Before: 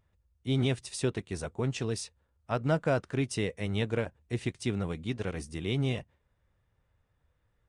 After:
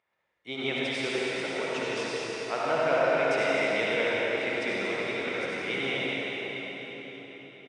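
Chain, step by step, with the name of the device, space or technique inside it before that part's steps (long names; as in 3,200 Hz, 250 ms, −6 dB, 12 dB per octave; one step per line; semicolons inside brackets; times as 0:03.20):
station announcement (band-pass filter 490–4,400 Hz; parametric band 2,200 Hz +8 dB 0.29 octaves; loudspeakers that aren't time-aligned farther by 35 metres −9 dB, 83 metres −9 dB; convolution reverb RT60 4.7 s, pre-delay 52 ms, DRR −6.5 dB)
spring reverb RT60 4 s, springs 32/36 ms, chirp 60 ms, DRR 9 dB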